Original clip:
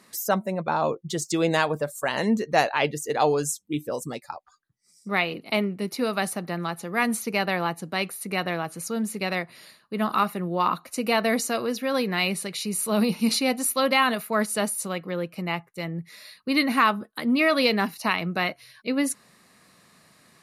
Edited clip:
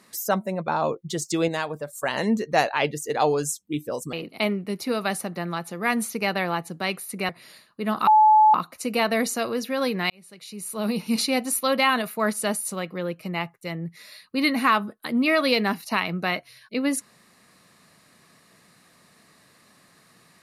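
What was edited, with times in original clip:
1.48–1.93 gain -5.5 dB
4.13–5.25 cut
8.41–9.42 cut
10.2–10.67 bleep 861 Hz -11.5 dBFS
12.23–13.43 fade in

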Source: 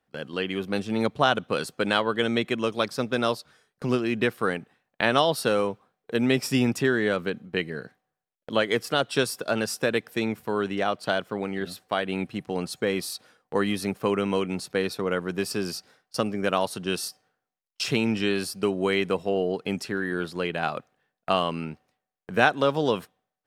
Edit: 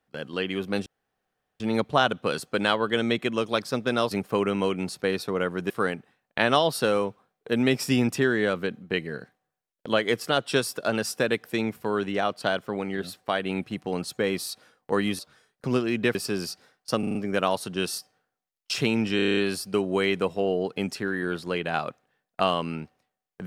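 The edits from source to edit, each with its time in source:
0.86 insert room tone 0.74 s
3.37–4.33 swap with 13.82–15.41
16.25 stutter 0.04 s, 5 plays
18.26 stutter 0.03 s, 8 plays

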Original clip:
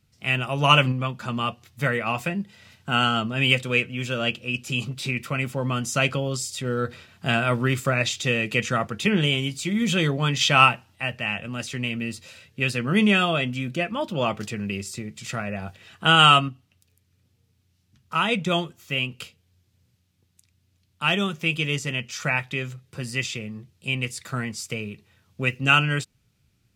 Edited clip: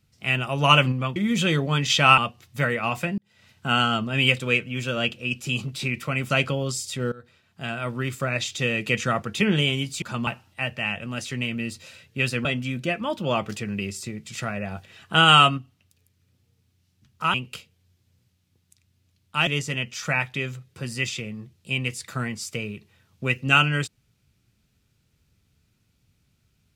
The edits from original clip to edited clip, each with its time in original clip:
1.16–1.41 swap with 9.67–10.69
2.41–2.91 fade in
5.53–5.95 cut
6.77–8.62 fade in, from -21 dB
12.87–13.36 cut
18.25–19.01 cut
21.14–21.64 cut

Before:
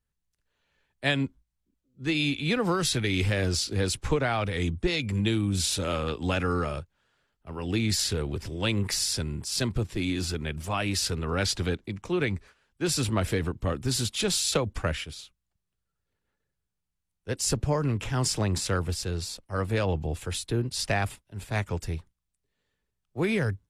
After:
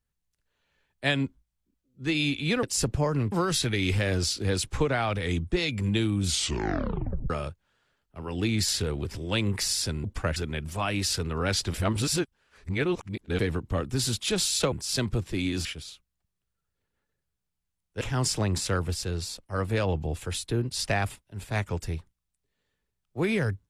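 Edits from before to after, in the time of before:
5.56 tape stop 1.05 s
9.35–10.28 swap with 14.64–14.96
11.66–13.31 reverse
17.32–18.01 move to 2.63

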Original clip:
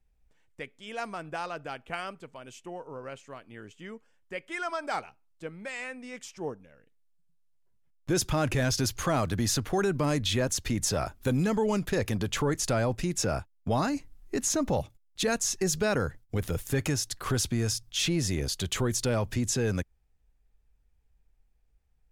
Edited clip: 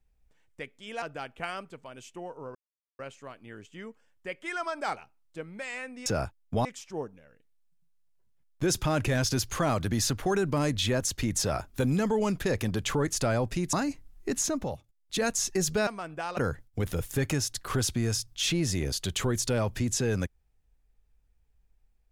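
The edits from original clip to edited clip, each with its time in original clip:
1.02–1.52 move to 15.93
3.05 insert silence 0.44 s
13.2–13.79 move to 6.12
14.44–15.32 dip -9.5 dB, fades 0.40 s

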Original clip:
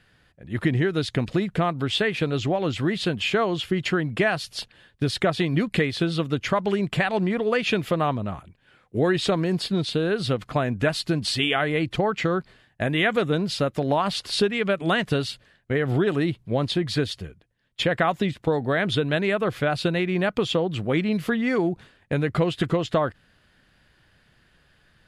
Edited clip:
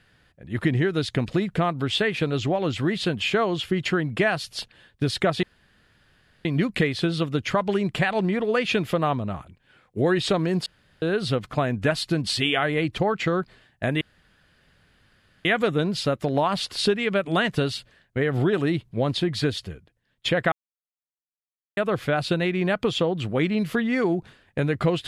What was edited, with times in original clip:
5.43 insert room tone 1.02 s
9.64–10 room tone
12.99 insert room tone 1.44 s
18.06–19.31 mute

